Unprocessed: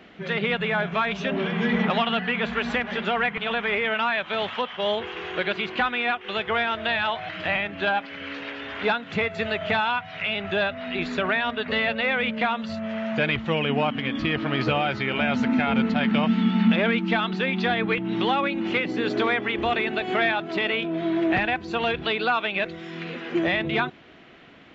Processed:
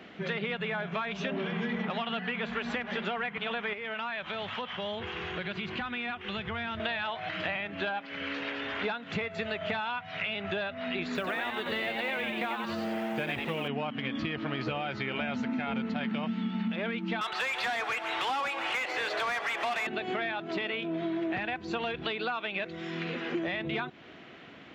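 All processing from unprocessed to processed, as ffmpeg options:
-filter_complex "[0:a]asettb=1/sr,asplit=3[a][b][c];[a]atrim=end=3.734[d];[b]atrim=start=3.73:end=6.8,asetpts=PTS-STARTPTS,afade=t=in:d=0.004:c=qsin,afade=t=out:st=3.066:d=0.004:c=qsin,asubboost=boost=9:cutoff=170,acompressor=threshold=-33dB:ratio=3:attack=3.2:release=140:knee=1:detection=peak[e];[c]atrim=start=6.796[f];[d][e]acrossfade=d=0.004:c1=hsin:c2=qsin[g];[g][f]acrossfade=d=0.004:c1=qsin:c2=hsin,asettb=1/sr,asplit=3[h][i][j];[h]atrim=end=11.154[k];[i]atrim=start=11.15:end=13.68,asetpts=PTS-STARTPTS,afade=t=in:d=0.004:c=qsin,afade=t=out:st=2.526:d=0.004:c=qsin,acrusher=bits=7:mode=log:mix=0:aa=0.000001,asplit=7[l][m][n][o][p][q][r];[m]adelay=91,afreqshift=120,volume=-4.5dB[s];[n]adelay=182,afreqshift=240,volume=-11.2dB[t];[o]adelay=273,afreqshift=360,volume=-18dB[u];[p]adelay=364,afreqshift=480,volume=-24.7dB[v];[q]adelay=455,afreqshift=600,volume=-31.5dB[w];[r]adelay=546,afreqshift=720,volume=-38.2dB[x];[l][s][t][u][v][w][x]amix=inputs=7:normalize=0,atrim=end_sample=111573[y];[j]atrim=start=13.676[z];[k][y]acrossfade=d=0.004:c1=hsin:c2=qsin[aa];[aa][z]acrossfade=d=0.004:c1=qsin:c2=hsin,asettb=1/sr,asplit=3[ab][ac][ad];[ab]atrim=end=17.214[ae];[ac]atrim=start=17.21:end=19.87,asetpts=PTS-STARTPTS,afade=t=in:d=0.004:c=qsin,afade=t=out:st=2.656:d=0.004:c=qsin,highpass=f=570:w=0.5412,highpass=f=570:w=1.3066,asplit=2[af][ag];[ag]highpass=f=720:p=1,volume=21dB,asoftclip=type=tanh:threshold=-13.5dB[ah];[af][ah]amix=inputs=2:normalize=0,lowpass=f=2.3k:p=1,volume=-6dB,aecho=1:1:143|286|429|572|715|858:0.224|0.13|0.0753|0.0437|0.0253|0.0147,atrim=end_sample=117306[ai];[ad]atrim=start=19.866[aj];[ae][ai]acrossfade=d=0.004:c1=hsin:c2=qsin[ak];[ak][aj]acrossfade=d=0.004:c1=qsin:c2=hsin,highpass=77,acompressor=threshold=-30dB:ratio=6"

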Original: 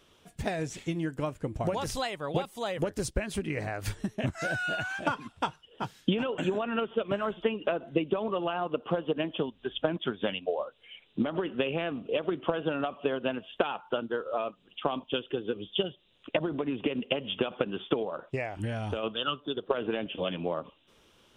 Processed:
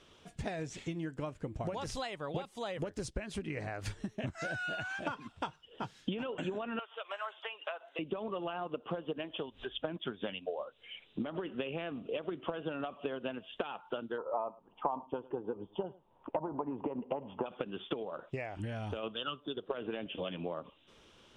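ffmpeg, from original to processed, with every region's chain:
-filter_complex "[0:a]asettb=1/sr,asplit=3[a][b][c];[a]atrim=end=6.794[d];[b]atrim=start=6.79:end=7.99,asetpts=PTS-STARTPTS,afade=t=in:d=0.004:c=qsin,afade=t=out:st=1.196:d=0.004:c=qsin,highpass=f=730:w=0.5412,highpass=f=730:w=1.3066,equalizer=f=7.7k:w=6.5:g=4[e];[c]atrim=start=7.986[f];[d][e]acrossfade=d=0.004:c1=hsin:c2=qsin[g];[g][f]acrossfade=d=0.004:c1=qsin:c2=hsin,asettb=1/sr,asplit=3[h][i][j];[h]atrim=end=9.194[k];[i]atrim=start=9.19:end=9.78,asetpts=PTS-STARTPTS,afade=t=in:d=0.004:c=qsin,afade=t=out:st=0.586:d=0.004:c=qsin,acompressor=mode=upward:threshold=-33dB:ratio=2.5:attack=3.2:release=140:knee=2.83:detection=peak,equalizer=f=200:w=1:g=-8.5[l];[j]atrim=start=9.776[m];[k][l]acrossfade=d=0.004:c1=hsin:c2=qsin[n];[n][m]acrossfade=d=0.004:c1=qsin:c2=hsin,asettb=1/sr,asplit=3[o][p][q];[o]atrim=end=14.184[r];[p]atrim=start=14.18:end=17.46,asetpts=PTS-STARTPTS,afade=t=in:d=0.004:c=qsin,afade=t=out:st=3.276:d=0.004:c=qsin,lowpass=f=920:t=q:w=7.5,aecho=1:1:107:0.0668,atrim=end_sample=144648[s];[q]atrim=start=17.456[t];[r][s]acrossfade=d=0.004:c1=hsin:c2=qsin[u];[u][t]acrossfade=d=0.004:c1=qsin:c2=hsin,lowpass=7.9k,acompressor=threshold=-42dB:ratio=2,volume=1dB"

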